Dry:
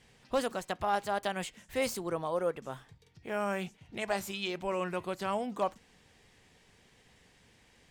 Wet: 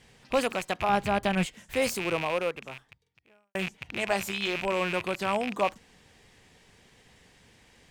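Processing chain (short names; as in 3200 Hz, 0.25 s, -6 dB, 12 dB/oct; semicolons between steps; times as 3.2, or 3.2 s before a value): rattling part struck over -50 dBFS, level -26 dBFS; 0.89–1.46 tone controls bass +13 dB, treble -4 dB; 2.23–3.55 fade out quadratic; gain +4.5 dB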